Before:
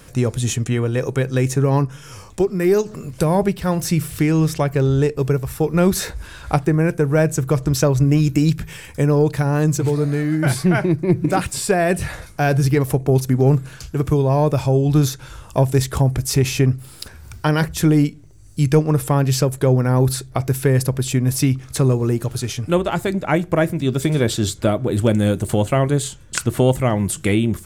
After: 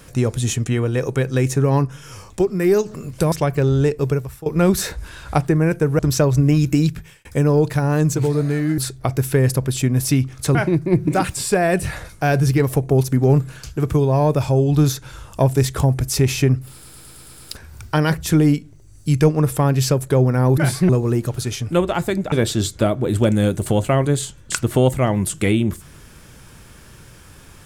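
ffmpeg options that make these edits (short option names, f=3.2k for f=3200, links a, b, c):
-filter_complex "[0:a]asplit=16[a][b][c][d][e][f][g][h][i][j][k][l][m][n][o][p];[a]atrim=end=3.322[q];[b]atrim=start=4.498:end=5.64,asetpts=PTS-STARTPTS,afade=t=out:st=0.752:d=0.39:silence=0.11885[r];[c]atrim=start=5.64:end=7.172,asetpts=PTS-STARTPTS,afade=t=in:d=0.004:c=hsin:silence=0.11885[s];[d]atrim=start=7.618:end=8.88,asetpts=PTS-STARTPTS,afade=t=out:st=0.802:d=0.46[t];[e]atrim=start=8.88:end=10.412,asetpts=PTS-STARTPTS,afade=t=in:d=0.004:c=hsin[u];[f]atrim=start=20.088:end=21.862[v];[g]atrim=start=10.718:end=17.012[w];[h]atrim=start=16.898:end=17.012[x];[i]atrim=start=16.898:end=17.012[y];[j]atrim=start=16.898:end=17.012[z];[k]atrim=start=16.898:end=17.012[aa];[l]atrim=start=16.898:end=17.012[ab];[m]atrim=start=16.898:end=20.092[ac];[n]atrim=start=10.408:end=10.722[ad];[o]atrim=start=21.858:end=23.292[ae];[p]atrim=start=24.148[af];[r][s]concat=n=2:v=0:a=1[ag];[q][ag]acrossfade=d=0.004:c1=hsin:c2=hsin[ah];[t][u]concat=n=2:v=0:a=1[ai];[ah][ai]acrossfade=d=0.004:c1=hsin:c2=hsin[aj];[aj][v]acrossfade=d=0.004:c1=hsin:c2=hsin[ak];[ak][w]acrossfade=d=0.004:c1=hsin:c2=hsin[al];[al][x]acrossfade=d=0.004:c1=hsin:c2=hsin[am];[am][y]acrossfade=d=0.004:c1=hsin:c2=hsin[an];[an][z]acrossfade=d=0.004:c1=hsin:c2=hsin[ao];[ao][aa]acrossfade=d=0.004:c1=hsin:c2=hsin[ap];[ap][ab]acrossfade=d=0.004:c1=hsin:c2=hsin[aq];[aq][ac]acrossfade=d=0.004:c1=hsin:c2=hsin[ar];[ar][ad]acrossfade=d=0.004:c1=hsin:c2=hsin[as];[as][ae]acrossfade=d=0.004:c1=hsin:c2=hsin[at];[at][af]acrossfade=d=0.004:c1=hsin:c2=hsin"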